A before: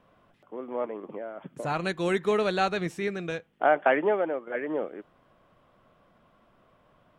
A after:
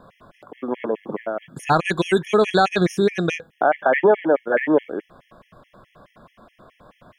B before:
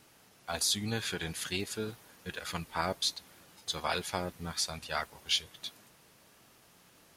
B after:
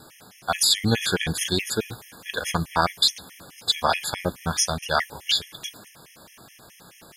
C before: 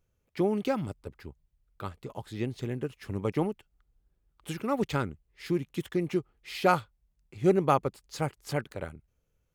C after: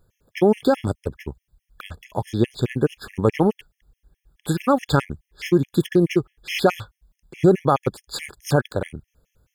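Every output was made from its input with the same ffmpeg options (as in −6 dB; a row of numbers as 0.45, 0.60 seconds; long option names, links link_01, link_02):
-af "alimiter=level_in=19.5dB:limit=-1dB:release=50:level=0:latency=1,afftfilt=real='re*gt(sin(2*PI*4.7*pts/sr)*(1-2*mod(floor(b*sr/1024/1700),2)),0)':imag='im*gt(sin(2*PI*4.7*pts/sr)*(1-2*mod(floor(b*sr/1024/1700),2)),0)':win_size=1024:overlap=0.75,volume=-5dB"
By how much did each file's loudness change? +8.0, +10.5, +9.0 LU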